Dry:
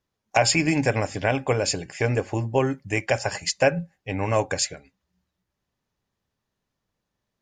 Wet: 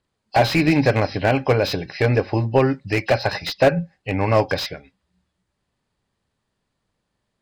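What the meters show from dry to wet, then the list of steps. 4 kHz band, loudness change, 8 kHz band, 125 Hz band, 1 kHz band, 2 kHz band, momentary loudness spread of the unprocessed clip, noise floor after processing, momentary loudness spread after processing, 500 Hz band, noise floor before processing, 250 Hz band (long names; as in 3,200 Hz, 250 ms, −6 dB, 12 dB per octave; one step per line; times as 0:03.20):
+1.5 dB, +4.0 dB, −12.0 dB, +5.5 dB, +4.5 dB, +2.5 dB, 7 LU, −77 dBFS, 8 LU, +5.0 dB, −82 dBFS, +5.5 dB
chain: hearing-aid frequency compression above 2,600 Hz 1.5 to 1
slew-rate limiting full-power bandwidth 130 Hz
level +5.5 dB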